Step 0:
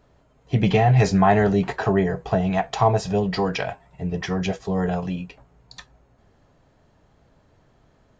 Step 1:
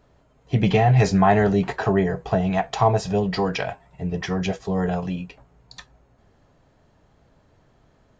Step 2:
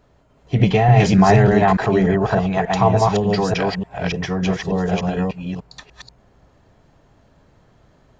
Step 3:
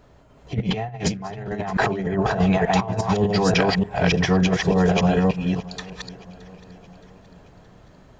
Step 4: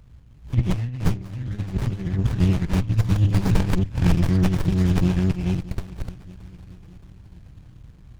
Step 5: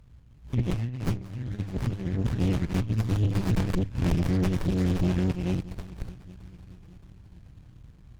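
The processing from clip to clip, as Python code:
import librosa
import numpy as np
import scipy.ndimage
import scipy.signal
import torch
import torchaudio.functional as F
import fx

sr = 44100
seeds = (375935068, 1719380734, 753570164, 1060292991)

y1 = x
y2 = fx.reverse_delay(y1, sr, ms=295, wet_db=-1.0)
y2 = F.gain(torch.from_numpy(y2), 2.0).numpy()
y3 = fx.over_compress(y2, sr, threshold_db=-20.0, ratio=-0.5)
y3 = fx.echo_feedback(y3, sr, ms=621, feedback_pct=55, wet_db=-21.0)
y4 = scipy.signal.sosfilt(scipy.signal.cheby1(2, 1.0, [110.0, 3400.0], 'bandstop', fs=sr, output='sos'), y3)
y4 = fx.running_max(y4, sr, window=65)
y4 = F.gain(torch.from_numpy(y4), 9.0).numpy()
y5 = fx.tube_stage(y4, sr, drive_db=19.0, bias=0.75)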